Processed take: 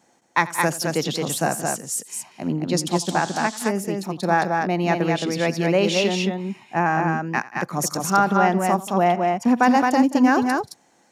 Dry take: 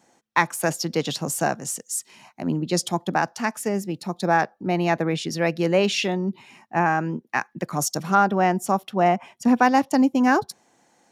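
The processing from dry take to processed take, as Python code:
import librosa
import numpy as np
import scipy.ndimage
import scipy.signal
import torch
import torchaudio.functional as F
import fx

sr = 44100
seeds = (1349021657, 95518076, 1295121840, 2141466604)

y = fx.echo_multitap(x, sr, ms=(87, 181, 218), db=(-19.0, -17.5, -3.5))
y = fx.dmg_noise_band(y, sr, seeds[0], low_hz=3200.0, high_hz=8000.0, level_db=-39.0, at=(2.91, 3.68), fade=0.02)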